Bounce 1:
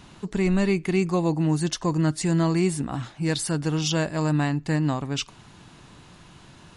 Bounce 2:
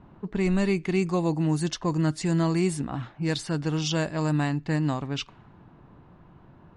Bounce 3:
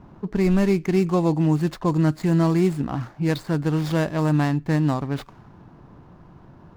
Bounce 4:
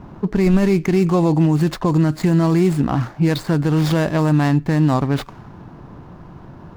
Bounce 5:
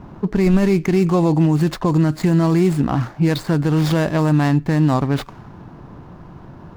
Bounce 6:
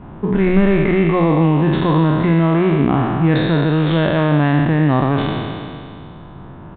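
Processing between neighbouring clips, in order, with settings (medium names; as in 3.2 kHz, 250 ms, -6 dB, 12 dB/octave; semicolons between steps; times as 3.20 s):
level-controlled noise filter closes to 950 Hz, open at -18 dBFS; trim -2 dB
median filter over 15 samples; trim +5 dB
peak limiter -16 dBFS, peak gain reduction 8 dB; trim +8.5 dB
no audible change
spectral sustain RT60 2.37 s; hum notches 60/120/180 Hz; resampled via 8 kHz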